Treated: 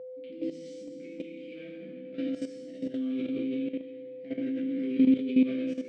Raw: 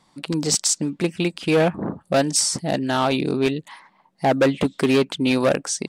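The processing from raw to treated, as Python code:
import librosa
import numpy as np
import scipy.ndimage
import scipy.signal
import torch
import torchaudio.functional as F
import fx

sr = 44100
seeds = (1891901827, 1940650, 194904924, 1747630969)

y = fx.vowel_filter(x, sr, vowel='i')
y = fx.low_shelf(y, sr, hz=290.0, db=5.5)
y = fx.resonator_bank(y, sr, root=36, chord='major', decay_s=0.5)
y = fx.rev_plate(y, sr, seeds[0], rt60_s=1.9, hf_ratio=0.95, predelay_ms=0, drr_db=-5.0)
y = y + 10.0 ** (-39.0 / 20.0) * np.sin(2.0 * np.pi * 510.0 * np.arange(len(y)) / sr)
y = scipy.signal.sosfilt(scipy.signal.butter(2, 90.0, 'highpass', fs=sr, output='sos'), y)
y = fx.high_shelf(y, sr, hz=5900.0, db=-8.5)
y = fx.hum_notches(y, sr, base_hz=50, count=5)
y = fx.level_steps(y, sr, step_db=12)
y = y * 10.0 ** (5.5 / 20.0)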